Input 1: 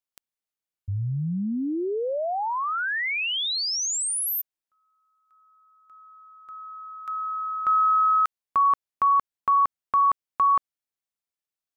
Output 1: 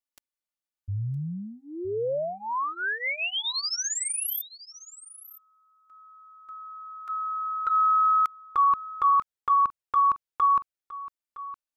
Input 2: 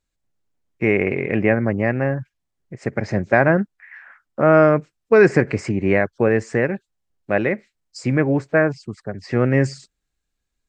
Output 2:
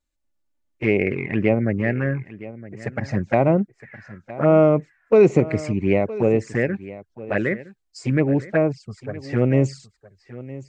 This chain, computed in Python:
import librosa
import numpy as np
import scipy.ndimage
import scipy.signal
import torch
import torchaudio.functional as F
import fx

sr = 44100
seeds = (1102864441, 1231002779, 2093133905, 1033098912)

y = fx.env_flanger(x, sr, rest_ms=3.4, full_db=-12.5)
y = y + 10.0 ** (-17.0 / 20.0) * np.pad(y, (int(964 * sr / 1000.0), 0))[:len(y)]